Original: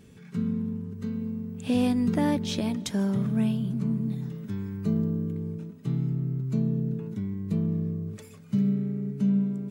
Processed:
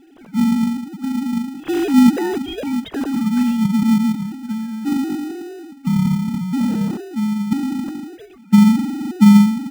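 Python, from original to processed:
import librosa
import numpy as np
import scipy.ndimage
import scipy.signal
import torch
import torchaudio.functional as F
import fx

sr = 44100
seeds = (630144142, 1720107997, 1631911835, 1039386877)

p1 = fx.sine_speech(x, sr)
p2 = fx.sample_hold(p1, sr, seeds[0], rate_hz=1100.0, jitter_pct=0)
p3 = p1 + F.gain(torch.from_numpy(p2), -6.0).numpy()
y = F.gain(torch.from_numpy(p3), 7.5).numpy()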